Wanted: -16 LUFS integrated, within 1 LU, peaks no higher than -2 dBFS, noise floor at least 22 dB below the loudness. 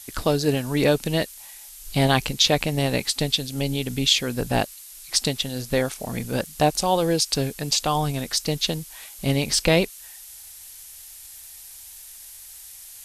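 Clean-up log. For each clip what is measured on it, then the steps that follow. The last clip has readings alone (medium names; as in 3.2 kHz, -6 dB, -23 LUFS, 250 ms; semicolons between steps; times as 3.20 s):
noise floor -43 dBFS; noise floor target -45 dBFS; loudness -23.0 LUFS; peak level -4.5 dBFS; loudness target -16.0 LUFS
-> noise reduction 6 dB, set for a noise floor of -43 dBFS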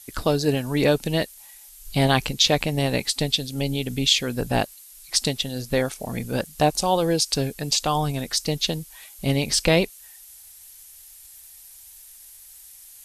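noise floor -47 dBFS; loudness -23.0 LUFS; peak level -4.5 dBFS; loudness target -16.0 LUFS
-> trim +7 dB; peak limiter -2 dBFS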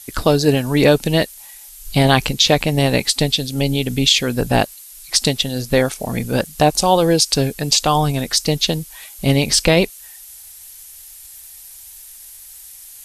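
loudness -16.5 LUFS; peak level -2.0 dBFS; noise floor -40 dBFS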